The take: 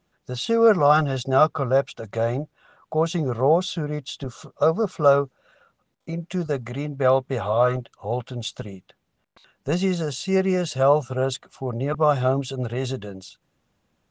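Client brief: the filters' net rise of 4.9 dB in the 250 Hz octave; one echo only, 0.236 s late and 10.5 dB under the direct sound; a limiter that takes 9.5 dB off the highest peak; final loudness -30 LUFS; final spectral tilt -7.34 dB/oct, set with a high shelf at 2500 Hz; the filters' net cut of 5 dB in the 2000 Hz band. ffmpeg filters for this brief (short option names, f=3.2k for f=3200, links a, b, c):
-af "equalizer=f=250:t=o:g=7.5,equalizer=f=2k:t=o:g=-6,highshelf=f=2.5k:g=-4,alimiter=limit=-14.5dB:level=0:latency=1,aecho=1:1:236:0.299,volume=-4.5dB"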